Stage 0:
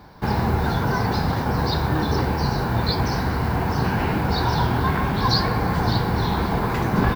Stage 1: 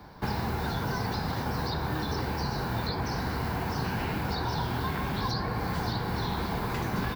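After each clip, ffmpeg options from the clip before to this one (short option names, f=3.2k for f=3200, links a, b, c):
-filter_complex "[0:a]acrossover=split=150|980|2500[a][b][c][d];[a]acompressor=threshold=-32dB:ratio=4[e];[b]acompressor=threshold=-31dB:ratio=4[f];[c]acompressor=threshold=-37dB:ratio=4[g];[d]acompressor=threshold=-37dB:ratio=4[h];[e][f][g][h]amix=inputs=4:normalize=0,volume=-2.5dB"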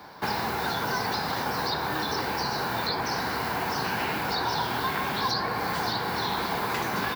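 -af "highpass=f=590:p=1,volume=7dB"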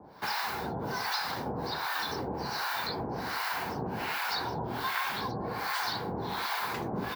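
-filter_complex "[0:a]acrossover=split=770[a][b];[a]aeval=exprs='val(0)*(1-1/2+1/2*cos(2*PI*1.3*n/s))':c=same[c];[b]aeval=exprs='val(0)*(1-1/2-1/2*cos(2*PI*1.3*n/s))':c=same[d];[c][d]amix=inputs=2:normalize=0"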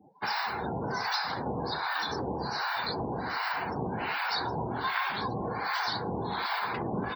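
-af "afftdn=nr=35:nf=-42,volume=2dB"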